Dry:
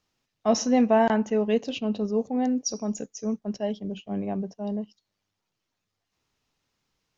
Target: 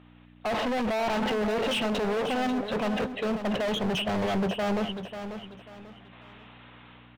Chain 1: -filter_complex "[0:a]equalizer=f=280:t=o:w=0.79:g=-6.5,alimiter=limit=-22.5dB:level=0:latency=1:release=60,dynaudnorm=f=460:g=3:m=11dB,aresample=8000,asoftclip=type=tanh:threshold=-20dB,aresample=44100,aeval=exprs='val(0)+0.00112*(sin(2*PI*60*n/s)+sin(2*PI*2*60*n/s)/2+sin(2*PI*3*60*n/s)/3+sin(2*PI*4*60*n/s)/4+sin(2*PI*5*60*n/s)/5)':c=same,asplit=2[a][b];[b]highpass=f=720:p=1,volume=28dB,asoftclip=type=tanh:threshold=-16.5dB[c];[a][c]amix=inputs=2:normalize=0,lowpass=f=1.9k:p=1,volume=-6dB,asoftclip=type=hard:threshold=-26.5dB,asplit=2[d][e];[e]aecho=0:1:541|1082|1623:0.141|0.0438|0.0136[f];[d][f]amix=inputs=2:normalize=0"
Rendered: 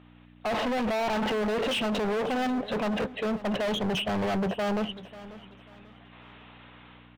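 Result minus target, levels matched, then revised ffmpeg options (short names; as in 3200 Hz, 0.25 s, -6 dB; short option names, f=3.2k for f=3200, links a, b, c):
soft clip: distortion +15 dB; echo-to-direct -7.5 dB
-filter_complex "[0:a]equalizer=f=280:t=o:w=0.79:g=-6.5,alimiter=limit=-22.5dB:level=0:latency=1:release=60,dynaudnorm=f=460:g=3:m=11dB,aresample=8000,asoftclip=type=tanh:threshold=-9dB,aresample=44100,aeval=exprs='val(0)+0.00112*(sin(2*PI*60*n/s)+sin(2*PI*2*60*n/s)/2+sin(2*PI*3*60*n/s)/3+sin(2*PI*4*60*n/s)/4+sin(2*PI*5*60*n/s)/5)':c=same,asplit=2[a][b];[b]highpass=f=720:p=1,volume=28dB,asoftclip=type=tanh:threshold=-16.5dB[c];[a][c]amix=inputs=2:normalize=0,lowpass=f=1.9k:p=1,volume=-6dB,asoftclip=type=hard:threshold=-26.5dB,asplit=2[d][e];[e]aecho=0:1:541|1082|1623:0.335|0.104|0.0322[f];[d][f]amix=inputs=2:normalize=0"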